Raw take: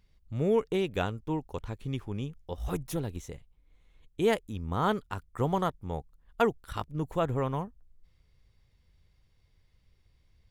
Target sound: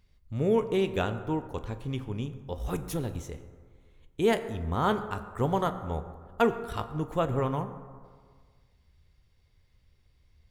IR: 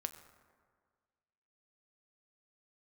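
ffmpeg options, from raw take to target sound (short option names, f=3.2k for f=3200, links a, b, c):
-filter_complex "[1:a]atrim=start_sample=2205[a];[0:a][a]afir=irnorm=-1:irlink=0,volume=3dB"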